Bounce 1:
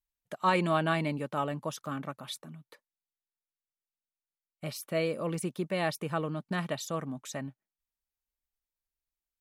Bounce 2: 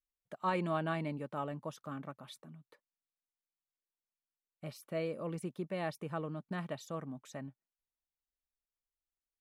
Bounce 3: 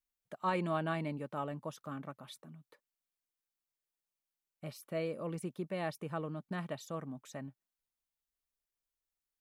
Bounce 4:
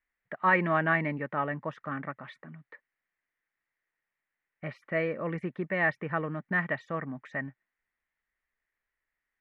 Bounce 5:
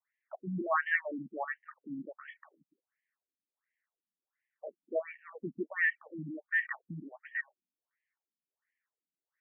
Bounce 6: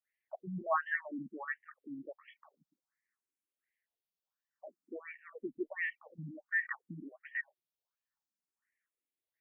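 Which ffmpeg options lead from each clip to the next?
ffmpeg -i in.wav -af "highshelf=frequency=2300:gain=-8,volume=-6dB" out.wav
ffmpeg -i in.wav -af "highshelf=frequency=9700:gain=4" out.wav
ffmpeg -i in.wav -af "lowpass=frequency=1900:width_type=q:width=6.5,volume=5.5dB" out.wav
ffmpeg -i in.wav -af "afftfilt=real='re*between(b*sr/1024,210*pow(2400/210,0.5+0.5*sin(2*PI*1.4*pts/sr))/1.41,210*pow(2400/210,0.5+0.5*sin(2*PI*1.4*pts/sr))*1.41)':imag='im*between(b*sr/1024,210*pow(2400/210,0.5+0.5*sin(2*PI*1.4*pts/sr))/1.41,210*pow(2400/210,0.5+0.5*sin(2*PI*1.4*pts/sr))*1.41)':win_size=1024:overlap=0.75" out.wav
ffmpeg -i in.wav -filter_complex "[0:a]asplit=2[link_01][link_02];[link_02]afreqshift=0.55[link_03];[link_01][link_03]amix=inputs=2:normalize=1" out.wav

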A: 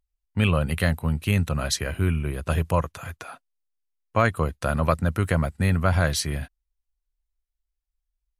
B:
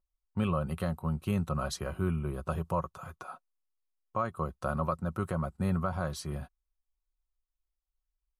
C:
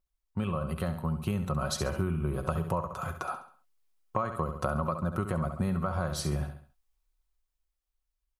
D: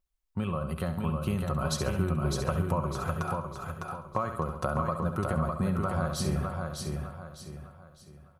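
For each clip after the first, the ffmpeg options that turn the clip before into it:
ffmpeg -i in.wav -af "highshelf=frequency=1500:width_type=q:width=3:gain=-6.5,aecho=1:1:5.4:0.41,alimiter=limit=-12dB:level=0:latency=1:release=427,volume=-6.5dB" out.wav
ffmpeg -i in.wav -filter_complex "[0:a]dynaudnorm=framelen=210:gausssize=13:maxgain=7.5dB,asplit=2[link_01][link_02];[link_02]aecho=0:1:68|136|204|272:0.316|0.12|0.0457|0.0174[link_03];[link_01][link_03]amix=inputs=2:normalize=0,acompressor=threshold=-28dB:ratio=6,volume=1.5dB" out.wav
ffmpeg -i in.wav -af "aecho=1:1:605|1210|1815|2420|3025:0.631|0.227|0.0818|0.0294|0.0106" out.wav

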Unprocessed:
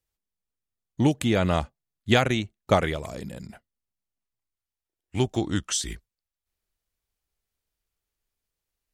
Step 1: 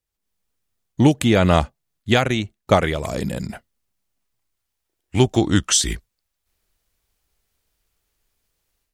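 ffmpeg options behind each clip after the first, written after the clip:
ffmpeg -i in.wav -af "dynaudnorm=framelen=140:gausssize=3:maxgain=13dB,volume=-1dB" out.wav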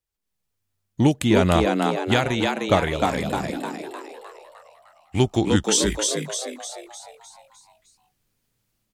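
ffmpeg -i in.wav -filter_complex "[0:a]asplit=8[link_01][link_02][link_03][link_04][link_05][link_06][link_07][link_08];[link_02]adelay=305,afreqshift=98,volume=-3.5dB[link_09];[link_03]adelay=610,afreqshift=196,volume=-9.3dB[link_10];[link_04]adelay=915,afreqshift=294,volume=-15.2dB[link_11];[link_05]adelay=1220,afreqshift=392,volume=-21dB[link_12];[link_06]adelay=1525,afreqshift=490,volume=-26.9dB[link_13];[link_07]adelay=1830,afreqshift=588,volume=-32.7dB[link_14];[link_08]adelay=2135,afreqshift=686,volume=-38.6dB[link_15];[link_01][link_09][link_10][link_11][link_12][link_13][link_14][link_15]amix=inputs=8:normalize=0,volume=-3.5dB" out.wav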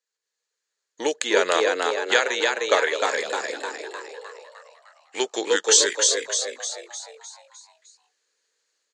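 ffmpeg -i in.wav -af "highpass=frequency=450:width=0.5412,highpass=frequency=450:width=1.3066,equalizer=frequency=460:width_type=q:width=4:gain=8,equalizer=frequency=720:width_type=q:width=4:gain=-7,equalizer=frequency=1700:width_type=q:width=4:gain=9,equalizer=frequency=4300:width_type=q:width=4:gain=8,equalizer=frequency=6800:width_type=q:width=4:gain=10,lowpass=frequency=8000:width=0.5412,lowpass=frequency=8000:width=1.3066" out.wav

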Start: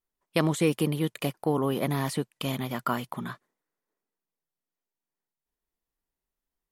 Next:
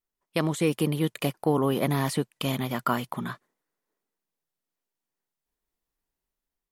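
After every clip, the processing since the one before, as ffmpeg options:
ffmpeg -i in.wav -af "dynaudnorm=framelen=520:gausssize=3:maxgain=4.5dB,volume=-2dB" out.wav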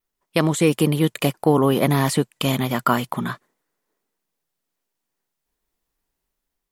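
ffmpeg -i in.wav -af "adynamicequalizer=threshold=0.00158:dfrequency=7500:dqfactor=6:tfrequency=7500:tqfactor=6:attack=5:release=100:ratio=0.375:range=3:mode=boostabove:tftype=bell,volume=7dB" out.wav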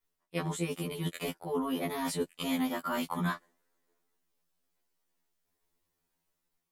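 ffmpeg -i in.wav -af "areverse,acompressor=threshold=-25dB:ratio=12,areverse,afftfilt=real='re*2*eq(mod(b,4),0)':imag='im*2*eq(mod(b,4),0)':win_size=2048:overlap=0.75" out.wav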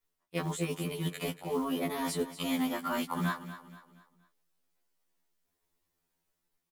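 ffmpeg -i in.wav -af "acrusher=bits=6:mode=log:mix=0:aa=0.000001,aecho=1:1:237|474|711|948:0.224|0.0895|0.0358|0.0143" out.wav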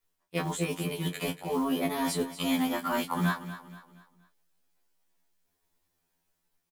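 ffmpeg -i in.wav -filter_complex "[0:a]asplit=2[link_01][link_02];[link_02]adelay=22,volume=-9.5dB[link_03];[link_01][link_03]amix=inputs=2:normalize=0,volume=3dB" out.wav

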